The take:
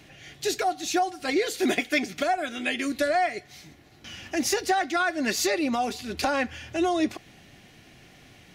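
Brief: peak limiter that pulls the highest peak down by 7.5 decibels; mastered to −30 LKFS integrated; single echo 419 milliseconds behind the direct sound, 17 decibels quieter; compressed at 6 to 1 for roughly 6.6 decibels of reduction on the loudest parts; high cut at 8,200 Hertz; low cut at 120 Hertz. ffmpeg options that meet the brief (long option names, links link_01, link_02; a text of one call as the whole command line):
ffmpeg -i in.wav -af "highpass=120,lowpass=8200,acompressor=threshold=-27dB:ratio=6,alimiter=limit=-23.5dB:level=0:latency=1,aecho=1:1:419:0.141,volume=3dB" out.wav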